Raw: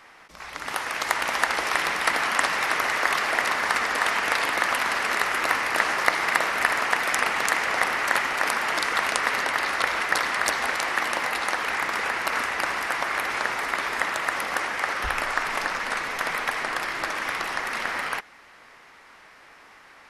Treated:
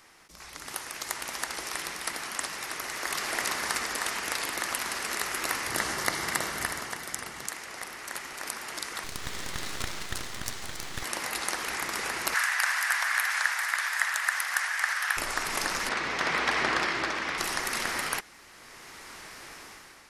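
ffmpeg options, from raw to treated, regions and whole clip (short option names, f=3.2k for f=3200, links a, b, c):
-filter_complex "[0:a]asettb=1/sr,asplit=3[a][b][c];[a]atrim=end=5.674[d];[b]atrim=start=5.67:end=7.48,asetpts=PTS-STARTPTS,afade=t=in:d=0.004:c=qsin,afade=t=out:st=1.806:d=0.004:c=qsin,equalizer=f=97:w=0.59:g=10,bandreject=f=2.5k:w=12[e];[c]atrim=start=7.476[f];[d][e]acrossfade=d=0.004:c1=hsin:c2=qsin[g];[g][f]acrossfade=d=0.004:c1=qsin:c2=hsin,asettb=1/sr,asplit=3[h][i][j];[h]atrim=end=9.044[k];[i]atrim=start=9.04:end=11.03,asetpts=PTS-STARTPTS,afade=t=in:d=0.004:c=qsin,afade=t=out:st=1.986:d=0.004:c=qsin,lowpass=9.1k,aeval=exprs='max(val(0),0)':c=same[l];[j]atrim=start=11.026[m];[k][l]acrossfade=d=0.004:c1=hsin:c2=qsin[n];[n][m]acrossfade=d=0.004:c1=qsin:c2=hsin,asettb=1/sr,asplit=3[o][p][q];[o]atrim=end=12.344[r];[p]atrim=start=12.34:end=15.17,asetpts=PTS-STARTPTS,afade=t=in:d=0.004:c=qsin,afade=t=out:st=2.826:d=0.004:c=qsin,highpass=f=790:w=0.5412,highpass=f=790:w=1.3066,equalizer=f=1.7k:t=o:w=0.53:g=10[s];[q]atrim=start=15.166[t];[r][s]acrossfade=d=0.004:c1=hsin:c2=qsin[u];[u][t]acrossfade=d=0.004:c1=qsin:c2=hsin,asettb=1/sr,asplit=3[v][w][x];[v]atrim=end=15.894[y];[w]atrim=start=15.89:end=17.38,asetpts=PTS-STARTPTS,afade=t=in:d=0.004:c=qsin,afade=t=out:st=1.486:d=0.004:c=qsin,asoftclip=type=hard:threshold=-19dB,highpass=120,lowpass=3.8k,aeval=exprs='val(0)+0.001*(sin(2*PI*60*n/s)+sin(2*PI*2*60*n/s)/2+sin(2*PI*3*60*n/s)/3+sin(2*PI*4*60*n/s)/4+sin(2*PI*5*60*n/s)/5)':c=same[z];[x]atrim=start=17.376[aa];[y][z]acrossfade=d=0.004:c1=hsin:c2=qsin[ab];[ab][aa]acrossfade=d=0.004:c1=qsin:c2=hsin,bass=f=250:g=8,treble=f=4k:g=14,dynaudnorm=f=170:g=7:m=11.5dB,equalizer=f=360:t=o:w=0.49:g=5.5,volume=-8.5dB"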